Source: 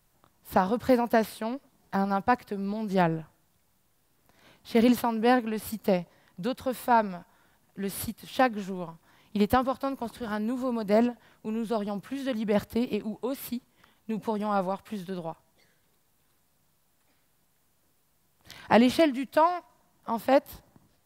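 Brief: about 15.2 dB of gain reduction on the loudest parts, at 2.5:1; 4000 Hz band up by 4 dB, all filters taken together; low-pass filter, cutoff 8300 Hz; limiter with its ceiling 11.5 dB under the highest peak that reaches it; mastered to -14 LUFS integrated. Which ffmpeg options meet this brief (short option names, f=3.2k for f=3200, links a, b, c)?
-af "lowpass=8.3k,equalizer=f=4k:t=o:g=5.5,acompressor=threshold=-40dB:ratio=2.5,volume=28dB,alimiter=limit=-3dB:level=0:latency=1"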